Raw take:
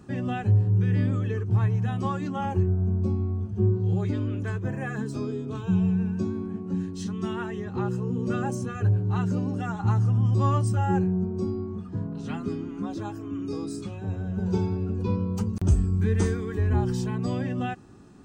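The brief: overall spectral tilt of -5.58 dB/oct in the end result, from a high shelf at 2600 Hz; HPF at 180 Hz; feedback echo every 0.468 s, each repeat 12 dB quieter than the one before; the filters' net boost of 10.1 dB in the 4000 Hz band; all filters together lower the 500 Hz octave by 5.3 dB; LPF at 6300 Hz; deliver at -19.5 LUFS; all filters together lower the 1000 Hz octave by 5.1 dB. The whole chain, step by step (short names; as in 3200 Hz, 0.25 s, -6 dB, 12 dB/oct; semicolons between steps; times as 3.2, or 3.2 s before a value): HPF 180 Hz; LPF 6300 Hz; bell 500 Hz -7 dB; bell 1000 Hz -6 dB; high shelf 2600 Hz +8.5 dB; bell 4000 Hz +7 dB; feedback echo 0.468 s, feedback 25%, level -12 dB; gain +13 dB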